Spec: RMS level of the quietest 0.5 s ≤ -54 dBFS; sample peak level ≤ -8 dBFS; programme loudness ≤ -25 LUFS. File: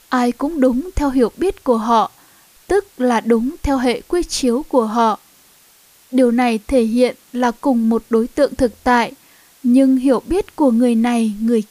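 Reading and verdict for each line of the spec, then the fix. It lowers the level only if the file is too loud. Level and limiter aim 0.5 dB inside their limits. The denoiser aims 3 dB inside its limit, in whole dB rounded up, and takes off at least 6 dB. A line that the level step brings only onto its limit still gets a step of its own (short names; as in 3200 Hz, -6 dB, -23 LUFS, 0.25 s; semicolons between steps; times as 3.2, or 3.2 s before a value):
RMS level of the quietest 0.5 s -50 dBFS: fail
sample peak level -3.5 dBFS: fail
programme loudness -17.0 LUFS: fail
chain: gain -8.5 dB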